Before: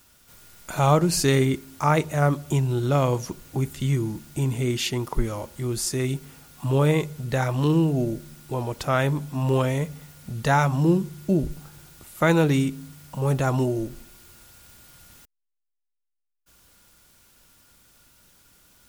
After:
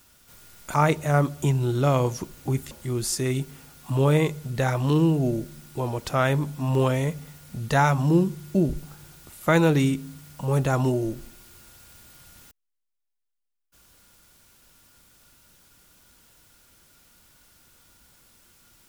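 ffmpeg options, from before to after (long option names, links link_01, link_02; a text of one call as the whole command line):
ffmpeg -i in.wav -filter_complex "[0:a]asplit=3[link_01][link_02][link_03];[link_01]atrim=end=0.742[link_04];[link_02]atrim=start=1.818:end=3.792[link_05];[link_03]atrim=start=5.448[link_06];[link_04][link_05]acrossfade=duration=0.004:curve1=hsin:curve2=hsin[link_07];[link_07][link_06]acrossfade=duration=0.004:curve1=hsin:curve2=hsin" out.wav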